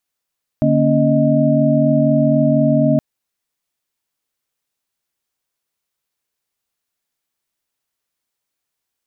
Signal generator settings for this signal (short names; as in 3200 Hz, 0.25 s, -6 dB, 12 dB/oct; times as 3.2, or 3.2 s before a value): chord D3/A#3/C#4/D#5 sine, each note -16.5 dBFS 2.37 s